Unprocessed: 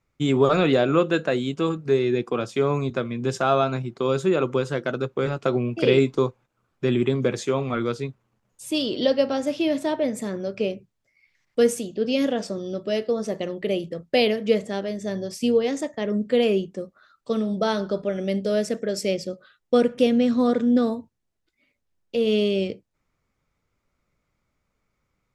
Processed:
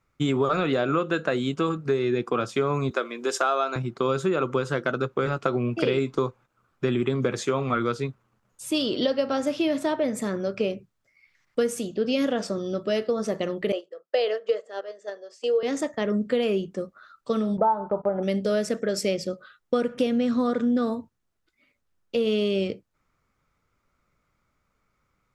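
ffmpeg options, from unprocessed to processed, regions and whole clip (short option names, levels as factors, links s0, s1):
-filter_complex "[0:a]asettb=1/sr,asplit=3[s0][s1][s2];[s0]atrim=end=2.914[s3];[s1]atrim=start=2.91:end=3.76,asetpts=PTS-STARTPTS,afade=t=in:d=0.004:c=qsin,afade=t=out:st=0.846:d=0.004:c=qsin,highpass=f=320:w=0.5412,highpass=f=320:w=1.3066,highshelf=f=5600:g=8[s4];[s2]atrim=start=3.756[s5];[s3][s4]acrossfade=d=0.004:c1=hsin:c2=qsin[s6];[s6][s5]acrossfade=d=0.004:c1=qsin:c2=hsin,asettb=1/sr,asplit=3[s7][s8][s9];[s7]atrim=end=13.724[s10];[s8]atrim=start=13.72:end=15.63,asetpts=PTS-STARTPTS,afade=t=in:d=0.004:c=qsin,afade=t=out:st=1.906:d=0.004:c=qsin,agate=range=0.316:threshold=0.0447:ratio=16:release=100:detection=peak,highpass=f=460:w=0.5412,highpass=f=460:w=1.3066,equalizer=f=470:t=q:w=4:g=5,equalizer=f=910:t=q:w=4:g=-5,equalizer=f=2300:t=q:w=4:g=-9,equalizer=f=3700:t=q:w=4:g=-6,equalizer=f=5700:t=q:w=4:g=-7,lowpass=f=7000:w=0.5412,lowpass=f=7000:w=1.3066[s11];[s9]atrim=start=15.626[s12];[s10][s11]acrossfade=d=0.004:c1=hsin:c2=qsin[s13];[s13][s12]acrossfade=d=0.004:c1=qsin:c2=hsin,asettb=1/sr,asplit=3[s14][s15][s16];[s14]atrim=end=17.574[s17];[s15]atrim=start=17.57:end=18.23,asetpts=PTS-STARTPTS,afade=t=in:d=0.004:c=qsin,afade=t=out:st=0.656:d=0.004:c=qsin,lowpass=f=880:t=q:w=10,agate=range=0.178:threshold=0.0224:ratio=16:release=100:detection=peak[s18];[s16]atrim=start=18.226[s19];[s17][s18]acrossfade=d=0.004:c1=hsin:c2=qsin[s20];[s20][s19]acrossfade=d=0.004:c1=qsin:c2=hsin,equalizer=f=1300:t=o:w=0.64:g=6.5,acompressor=threshold=0.0891:ratio=6,volume=1.12"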